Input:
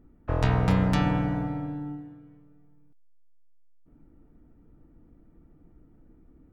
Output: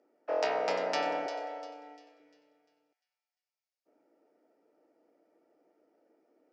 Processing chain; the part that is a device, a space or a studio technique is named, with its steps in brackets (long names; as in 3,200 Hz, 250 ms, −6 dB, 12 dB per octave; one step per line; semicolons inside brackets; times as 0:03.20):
0:01.26–0:02.20: Butterworth high-pass 340 Hz 36 dB per octave
phone speaker on a table (loudspeaker in its box 430–6,600 Hz, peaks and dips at 610 Hz +7 dB, 1,100 Hz −9 dB, 1,600 Hz −4 dB, 3,600 Hz −6 dB, 5,100 Hz +8 dB)
delay with a high-pass on its return 348 ms, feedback 39%, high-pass 2,800 Hz, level −9.5 dB